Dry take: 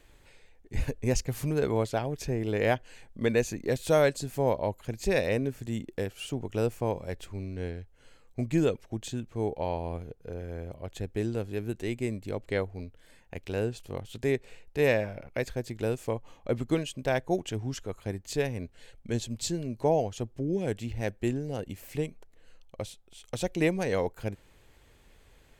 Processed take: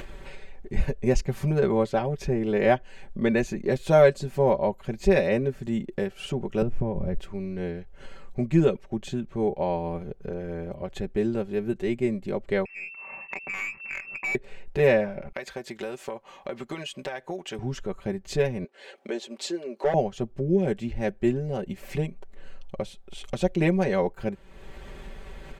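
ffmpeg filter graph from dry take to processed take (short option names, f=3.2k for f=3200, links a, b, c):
-filter_complex "[0:a]asettb=1/sr,asplit=3[a][b][c];[a]atrim=end=6.624[d];[b]atrim=start=6.62:end=7.19,asetpts=PTS-STARTPTS,afade=t=in:d=0.004:c=qsin,afade=t=out:st=0.566:d=0.004:c=qsin,acompressor=threshold=-35dB:ratio=3:attack=3.2:release=140:knee=1:detection=peak,aemphasis=mode=reproduction:type=riaa[e];[c]atrim=start=7.186[f];[d][e]acrossfade=d=0.004:c1=hsin:c2=qsin[g];[g][f]acrossfade=d=0.004:c1=qsin:c2=hsin,asettb=1/sr,asplit=3[h][i][j];[h]atrim=end=12.654[k];[i]atrim=start=12.65:end=14.35,asetpts=PTS-STARTPTS,afade=t=in:d=0.004:c=qsin,afade=t=out:st=1.696:d=0.004:c=qsin,lowpass=f=2.3k:t=q:w=0.5098,lowpass=f=2.3k:t=q:w=0.6013,lowpass=f=2.3k:t=q:w=0.9,lowpass=f=2.3k:t=q:w=2.563,afreqshift=-2700,aeval=exprs='(tanh(28.2*val(0)+0.1)-tanh(0.1))/28.2':c=same[l];[j]atrim=start=14.346[m];[k][l]acrossfade=d=0.004:c1=hsin:c2=qsin[n];[n][m]acrossfade=d=0.004:c1=qsin:c2=hsin,asettb=1/sr,asplit=3[o][p][q];[o]atrim=end=15.324[r];[p]atrim=start=15.32:end=17.59,asetpts=PTS-STARTPTS,afade=t=in:d=0.004:c=qsin,afade=t=out:st=2.266:d=0.004:c=qsin,highpass=f=1k:p=1,acompressor=threshold=-35dB:ratio=6:attack=3.2:release=140:knee=1:detection=peak[s];[q]atrim=start=17.586[t];[r][s]acrossfade=d=0.004:c1=hsin:c2=qsin[u];[u][t]acrossfade=d=0.004:c1=qsin:c2=hsin,asettb=1/sr,asplit=3[v][w][x];[v]atrim=end=18.644[y];[w]atrim=start=18.64:end=19.94,asetpts=PTS-STARTPTS,afade=t=in:d=0.004:c=qsin,afade=t=out:st=1.296:d=0.004:c=qsin,highpass=f=350:w=0.5412,highpass=f=350:w=1.3066,highshelf=f=8.2k:g=-7.5,asoftclip=type=hard:threshold=-22.5dB[z];[x]atrim=start=19.936[aa];[y][z]acrossfade=d=0.004:c1=hsin:c2=qsin[ab];[ab][aa]acrossfade=d=0.004:c1=qsin:c2=hsin,lowpass=f=2k:p=1,aecho=1:1:5.2:0.77,acompressor=mode=upward:threshold=-31dB:ratio=2.5,volume=3.5dB"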